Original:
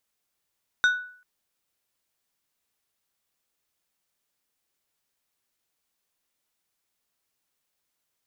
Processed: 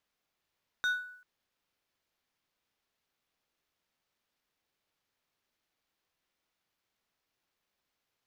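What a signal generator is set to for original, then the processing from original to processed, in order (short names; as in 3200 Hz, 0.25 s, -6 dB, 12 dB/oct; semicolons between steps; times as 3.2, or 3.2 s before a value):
glass hit plate, length 0.39 s, lowest mode 1480 Hz, decay 0.52 s, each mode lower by 10 dB, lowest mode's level -14.5 dB
median filter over 5 samples; dynamic EQ 1200 Hz, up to -5 dB, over -35 dBFS, Q 1; limiter -23.5 dBFS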